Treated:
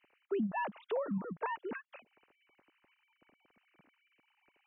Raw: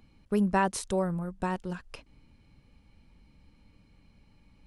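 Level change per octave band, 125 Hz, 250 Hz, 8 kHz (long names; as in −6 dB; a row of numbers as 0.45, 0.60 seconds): −12.5 dB, −8.5 dB, below −35 dB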